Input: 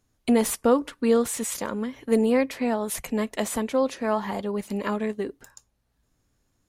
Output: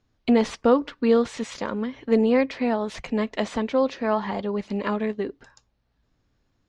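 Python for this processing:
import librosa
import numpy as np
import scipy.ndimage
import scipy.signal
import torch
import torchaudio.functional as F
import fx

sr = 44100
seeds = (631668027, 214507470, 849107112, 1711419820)

y = scipy.signal.sosfilt(scipy.signal.butter(4, 5100.0, 'lowpass', fs=sr, output='sos'), x)
y = y * 10.0 ** (1.5 / 20.0)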